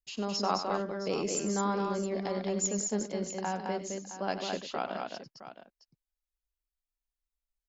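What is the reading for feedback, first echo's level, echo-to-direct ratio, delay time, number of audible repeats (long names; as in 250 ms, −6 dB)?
repeats not evenly spaced, −11.0 dB, −3.0 dB, 95 ms, 3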